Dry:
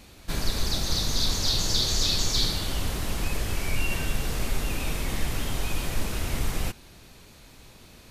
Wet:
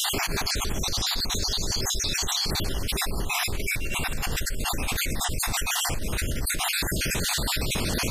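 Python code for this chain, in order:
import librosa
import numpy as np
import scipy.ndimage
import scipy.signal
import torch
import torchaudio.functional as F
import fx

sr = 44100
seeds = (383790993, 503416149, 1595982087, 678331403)

y = fx.spec_dropout(x, sr, seeds[0], share_pct=46)
y = fx.peak_eq(y, sr, hz=fx.steps((0.0, 400.0), (3.89, 8100.0)), db=6.0, octaves=0.21)
y = fx.env_flatten(y, sr, amount_pct=100)
y = F.gain(torch.from_numpy(y), -7.0).numpy()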